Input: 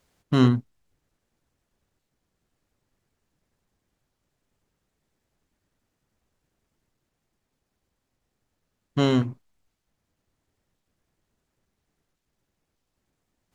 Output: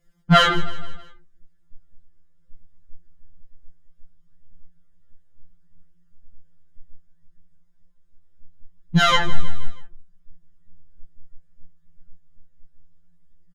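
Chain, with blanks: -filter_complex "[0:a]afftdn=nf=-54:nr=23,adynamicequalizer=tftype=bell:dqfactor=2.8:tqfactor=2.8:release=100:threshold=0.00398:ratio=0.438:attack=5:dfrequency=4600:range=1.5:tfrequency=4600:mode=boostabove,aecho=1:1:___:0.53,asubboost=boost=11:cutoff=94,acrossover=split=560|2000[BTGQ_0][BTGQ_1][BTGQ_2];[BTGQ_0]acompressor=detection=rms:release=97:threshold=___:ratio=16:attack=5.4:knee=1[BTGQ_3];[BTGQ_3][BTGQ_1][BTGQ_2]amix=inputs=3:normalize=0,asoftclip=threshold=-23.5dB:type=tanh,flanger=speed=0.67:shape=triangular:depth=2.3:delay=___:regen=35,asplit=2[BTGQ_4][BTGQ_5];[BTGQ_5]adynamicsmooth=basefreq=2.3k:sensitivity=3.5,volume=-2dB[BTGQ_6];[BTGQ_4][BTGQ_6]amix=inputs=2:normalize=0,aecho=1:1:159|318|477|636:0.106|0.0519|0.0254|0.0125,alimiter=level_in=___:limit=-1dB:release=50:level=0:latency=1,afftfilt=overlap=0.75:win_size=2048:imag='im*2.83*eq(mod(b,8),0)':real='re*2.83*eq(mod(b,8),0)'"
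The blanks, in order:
6.4, -25dB, 0.3, 24dB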